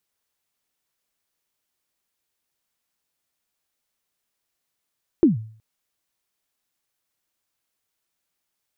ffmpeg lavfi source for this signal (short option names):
-f lavfi -i "aevalsrc='0.398*pow(10,-3*t/0.49)*sin(2*PI*(370*0.141/log(110/370)*(exp(log(110/370)*min(t,0.141)/0.141)-1)+110*max(t-0.141,0)))':d=0.37:s=44100"